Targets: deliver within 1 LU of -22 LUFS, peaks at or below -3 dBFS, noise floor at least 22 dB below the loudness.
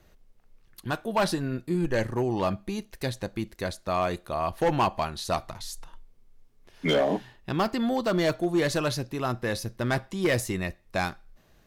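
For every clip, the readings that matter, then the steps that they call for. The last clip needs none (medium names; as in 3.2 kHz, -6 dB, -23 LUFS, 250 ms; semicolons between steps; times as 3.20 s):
clipped samples 1.0%; clipping level -18.0 dBFS; loudness -28.5 LUFS; peak level -18.0 dBFS; loudness target -22.0 LUFS
-> clip repair -18 dBFS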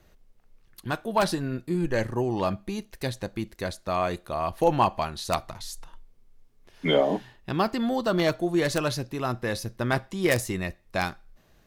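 clipped samples 0.0%; loudness -27.5 LUFS; peak level -9.0 dBFS; loudness target -22.0 LUFS
-> trim +5.5 dB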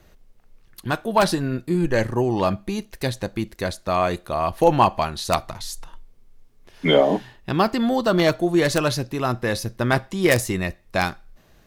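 loudness -22.0 LUFS; peak level -3.5 dBFS; noise floor -55 dBFS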